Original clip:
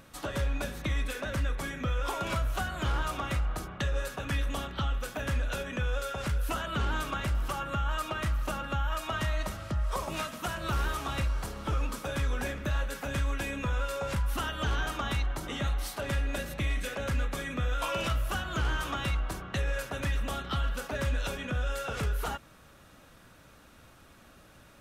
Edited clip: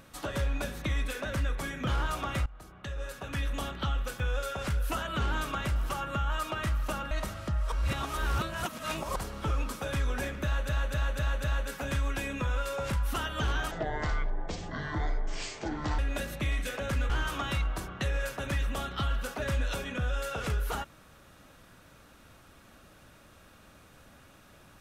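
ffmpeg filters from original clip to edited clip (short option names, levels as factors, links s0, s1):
-filter_complex "[0:a]asplit=14[s0][s1][s2][s3][s4][s5][s6][s7][s8][s9][s10][s11][s12][s13];[s0]atrim=end=1.872[s14];[s1]atrim=start=2.828:end=3.42,asetpts=PTS-STARTPTS,afade=t=out:st=0.588:d=0.004:c=hsin:silence=0.0944061[s15];[s2]atrim=start=3.42:end=5.162,asetpts=PTS-STARTPTS,afade=t=in:d=1.22:silence=0.0944061[s16];[s3]atrim=start=5.788:end=8.702[s17];[s4]atrim=start=9.338:end=9.952[s18];[s5]atrim=start=9.948:end=11.392,asetpts=PTS-STARTPTS,areverse[s19];[s6]atrim=start=11.388:end=12.922[s20];[s7]atrim=start=12.668:end=12.922[s21];[s8]atrim=start=12.668:end=12.922[s22];[s9]atrim=start=12.668:end=12.922[s23];[s10]atrim=start=12.668:end=14.944[s24];[s11]atrim=start=14.94:end=16.17,asetpts=PTS-STARTPTS,asetrate=23814,aresample=44100[s25];[s12]atrim=start=16.166:end=17.282[s26];[s13]atrim=start=18.628[s27];[s15][s16]concat=n=2:v=0:a=1[s28];[s14][s28]acrossfade=d=0.004:c1=hsin:c2=hsin[s29];[s29][s17]acrossfade=d=0.004:c1=hsin:c2=hsin[s30];[s30][s18]acrossfade=d=0.004:c1=hsin:c2=hsin[s31];[s31][s19]acrossfade=d=0.004:c1=hsin:c2=hsin[s32];[s32][s20]acrossfade=d=0.004:c1=hsin:c2=hsin[s33];[s33][s21]acrossfade=d=0.004:c1=hsin:c2=hsin[s34];[s34][s22]acrossfade=d=0.004:c1=hsin:c2=hsin[s35];[s35][s23]acrossfade=d=0.004:c1=hsin:c2=hsin[s36];[s36][s24]acrossfade=d=0.004:c1=hsin:c2=hsin[s37];[s37][s25]acrossfade=d=0.004:c1=hsin:c2=hsin[s38];[s38][s26]acrossfade=d=0.004:c1=hsin:c2=hsin[s39];[s39][s27]acrossfade=d=0.004:c1=hsin:c2=hsin"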